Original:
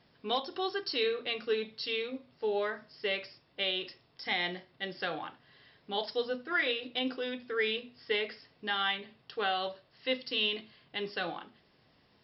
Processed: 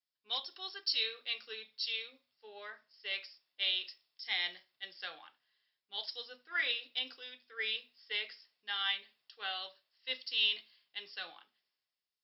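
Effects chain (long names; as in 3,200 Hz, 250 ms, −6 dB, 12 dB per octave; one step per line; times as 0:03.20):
first difference
multiband upward and downward expander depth 70%
level +5 dB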